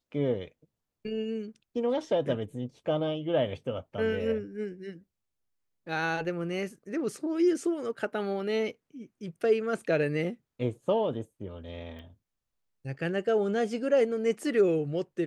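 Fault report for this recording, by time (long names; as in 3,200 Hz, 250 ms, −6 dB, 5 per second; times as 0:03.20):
0:11.99: click −35 dBFS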